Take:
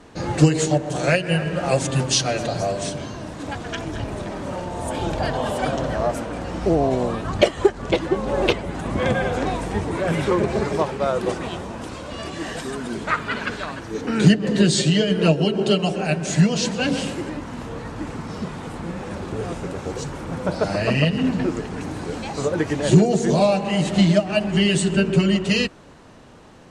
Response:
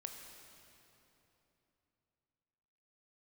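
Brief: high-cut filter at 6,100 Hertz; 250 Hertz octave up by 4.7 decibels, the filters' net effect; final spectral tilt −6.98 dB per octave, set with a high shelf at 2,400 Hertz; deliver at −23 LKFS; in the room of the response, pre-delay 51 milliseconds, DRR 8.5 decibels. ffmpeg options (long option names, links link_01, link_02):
-filter_complex "[0:a]lowpass=6100,equalizer=frequency=250:width_type=o:gain=7,highshelf=frequency=2400:gain=-8.5,asplit=2[link_01][link_02];[1:a]atrim=start_sample=2205,adelay=51[link_03];[link_02][link_03]afir=irnorm=-1:irlink=0,volume=-5.5dB[link_04];[link_01][link_04]amix=inputs=2:normalize=0,volume=-4dB"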